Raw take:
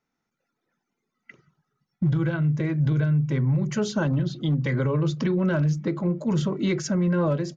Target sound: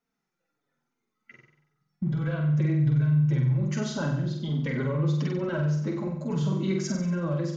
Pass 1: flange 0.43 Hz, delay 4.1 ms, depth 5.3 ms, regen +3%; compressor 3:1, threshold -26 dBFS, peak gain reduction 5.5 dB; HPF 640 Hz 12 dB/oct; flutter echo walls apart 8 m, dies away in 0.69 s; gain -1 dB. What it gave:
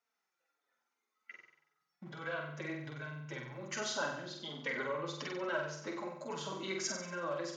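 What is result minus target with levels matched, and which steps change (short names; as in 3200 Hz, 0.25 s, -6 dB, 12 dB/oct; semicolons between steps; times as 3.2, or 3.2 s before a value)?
500 Hz band +6.5 dB
remove: HPF 640 Hz 12 dB/oct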